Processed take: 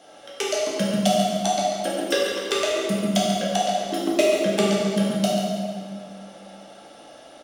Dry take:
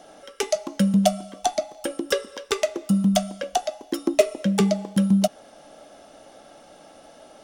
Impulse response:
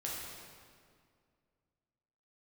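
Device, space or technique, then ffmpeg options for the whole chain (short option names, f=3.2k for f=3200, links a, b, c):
PA in a hall: -filter_complex "[0:a]highpass=f=140:p=1,equalizer=f=3.1k:t=o:w=1.2:g=5,aecho=1:1:140:0.335[a];[1:a]atrim=start_sample=2205[b];[a][b]afir=irnorm=-1:irlink=0"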